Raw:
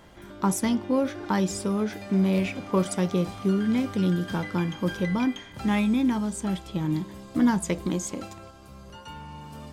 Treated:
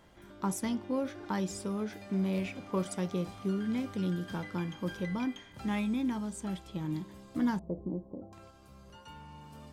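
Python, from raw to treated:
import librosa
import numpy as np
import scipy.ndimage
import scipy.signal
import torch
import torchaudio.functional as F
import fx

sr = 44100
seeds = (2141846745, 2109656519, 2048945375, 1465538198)

y = fx.cheby2_lowpass(x, sr, hz=2500.0, order=4, stop_db=60, at=(7.59, 8.33))
y = y * librosa.db_to_amplitude(-8.5)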